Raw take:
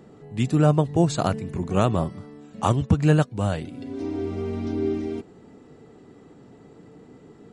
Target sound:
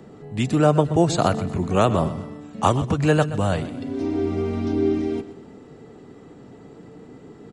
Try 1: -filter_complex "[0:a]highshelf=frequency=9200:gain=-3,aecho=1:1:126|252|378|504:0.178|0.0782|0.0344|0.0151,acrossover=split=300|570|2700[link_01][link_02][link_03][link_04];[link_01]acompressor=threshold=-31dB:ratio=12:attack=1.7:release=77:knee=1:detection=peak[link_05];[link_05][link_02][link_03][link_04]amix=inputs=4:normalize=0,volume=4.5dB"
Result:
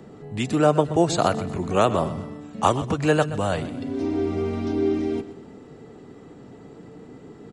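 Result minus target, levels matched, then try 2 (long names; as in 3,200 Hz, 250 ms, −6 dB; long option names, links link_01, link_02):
downward compressor: peak gain reduction +6.5 dB
-filter_complex "[0:a]highshelf=frequency=9200:gain=-3,aecho=1:1:126|252|378|504:0.178|0.0782|0.0344|0.0151,acrossover=split=300|570|2700[link_01][link_02][link_03][link_04];[link_01]acompressor=threshold=-24dB:ratio=12:attack=1.7:release=77:knee=1:detection=peak[link_05];[link_05][link_02][link_03][link_04]amix=inputs=4:normalize=0,volume=4.5dB"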